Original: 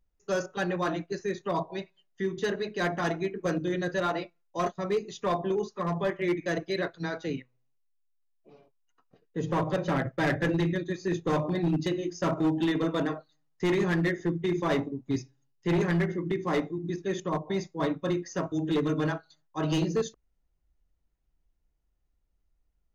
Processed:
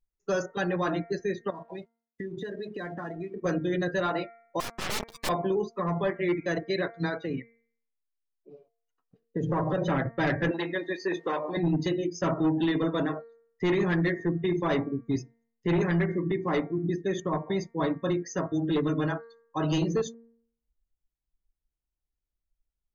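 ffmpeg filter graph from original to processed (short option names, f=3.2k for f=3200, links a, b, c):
-filter_complex "[0:a]asettb=1/sr,asplit=3[a][b][c];[a]atrim=end=1.504[d];[b]atrim=start=1.5:end=3.42,asetpts=PTS-STARTPTS,afade=t=in:d=0.004:c=qsin,afade=t=out:st=1.916:d=0.004:c=qsin,acompressor=threshold=-38dB:ratio=16:attack=3.2:release=140:knee=1:detection=peak,aeval=exprs='sgn(val(0))*max(abs(val(0))-0.00168,0)':c=same[e];[c]atrim=start=3.416[f];[d][e]acrossfade=d=0.004:c1=hsin:c2=qsin[g];[g][f]acrossfade=d=0.004:c1=qsin:c2=hsin,asettb=1/sr,asplit=3[h][i][j];[h]atrim=end=4.604[k];[i]atrim=start=4.6:end=5.29,asetpts=PTS-STARTPTS,afade=t=in:d=0.004:c=qsin,afade=t=out:st=0.686:d=0.004:c=qsin,equalizer=f=4.6k:t=o:w=0.42:g=2.5,aeval=exprs='(mod(35.5*val(0)+1,2)-1)/35.5':c=same,acrusher=bits=3:dc=4:mix=0:aa=0.000001[l];[j]atrim=start=5.286[m];[k][l]acrossfade=d=0.004:c1=hsin:c2=qsin[n];[n][m]acrossfade=d=0.004:c1=qsin:c2=hsin,asettb=1/sr,asplit=3[o][p][q];[o]atrim=end=7.184[r];[p]atrim=start=7.18:end=9.82,asetpts=PTS-STARTPTS,afade=t=in:d=0.004:c=qsin,afade=t=out:st=2.636:d=0.004:c=qsin,acompressor=threshold=-31dB:ratio=12:attack=3.2:release=140:knee=1:detection=peak,asoftclip=type=hard:threshold=-28.5dB[s];[q]atrim=start=9.816[t];[r][s]acrossfade=d=0.004:c1=hsin:c2=qsin[u];[u][t]acrossfade=d=0.004:c1=qsin:c2=hsin,asettb=1/sr,asplit=3[v][w][x];[v]atrim=end=10.514[y];[w]atrim=start=10.51:end=11.57,asetpts=PTS-STARTPTS,afade=t=in:d=0.004:c=qsin,afade=t=out:st=1.056:d=0.004:c=qsin,aeval=exprs='val(0)+0.5*0.00531*sgn(val(0))':c=same,highpass=470,lowpass=5.4k[z];[x]atrim=start=11.566[aa];[y][z]acrossfade=d=0.004:c1=hsin:c2=qsin[ab];[ab][aa]acrossfade=d=0.004:c1=qsin:c2=hsin,afftdn=nr=21:nf=-45,bandreject=f=230.5:t=h:w=4,bandreject=f=461:t=h:w=4,bandreject=f=691.5:t=h:w=4,bandreject=f=922:t=h:w=4,bandreject=f=1.1525k:t=h:w=4,bandreject=f=1.383k:t=h:w=4,bandreject=f=1.6135k:t=h:w=4,bandreject=f=1.844k:t=h:w=4,bandreject=f=2.0745k:t=h:w=4,bandreject=f=2.305k:t=h:w=4,alimiter=level_in=4dB:limit=-24dB:level=0:latency=1:release=414,volume=-4dB,volume=8dB"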